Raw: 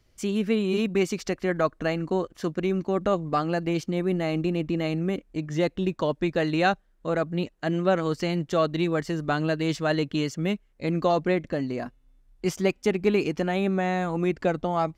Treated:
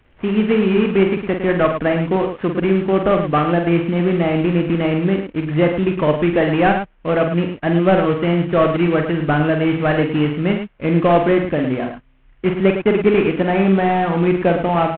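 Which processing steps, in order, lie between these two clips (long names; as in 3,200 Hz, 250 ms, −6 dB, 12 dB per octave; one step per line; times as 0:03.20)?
variable-slope delta modulation 16 kbit/s
loudspeakers that aren't time-aligned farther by 16 metres −6 dB, 37 metres −8 dB
level +8.5 dB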